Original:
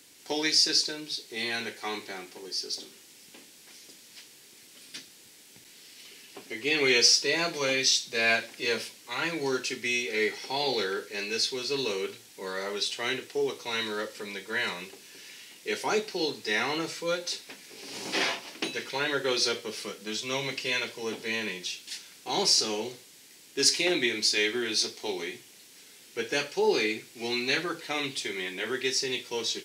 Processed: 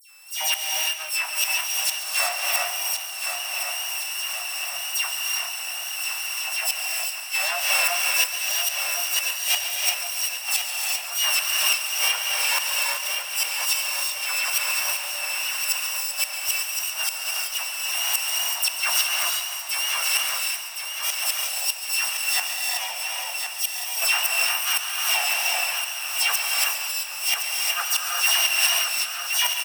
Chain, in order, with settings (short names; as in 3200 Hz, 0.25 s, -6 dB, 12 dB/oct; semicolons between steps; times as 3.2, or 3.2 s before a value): sample sorter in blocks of 16 samples; steep high-pass 640 Hz 72 dB/oct; high shelf 5200 Hz +2.5 dB; AGC gain up to 12 dB; dispersion lows, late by 0.114 s, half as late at 2700 Hz; wow and flutter 73 cents; flipped gate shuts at -15 dBFS, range -31 dB; on a send: feedback echo 1.067 s, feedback 54%, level -7 dB; on the sum: non-linear reverb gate 0.41 s rising, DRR -0.5 dB; warbling echo 0.14 s, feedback 68%, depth 52 cents, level -12.5 dB; gain +4.5 dB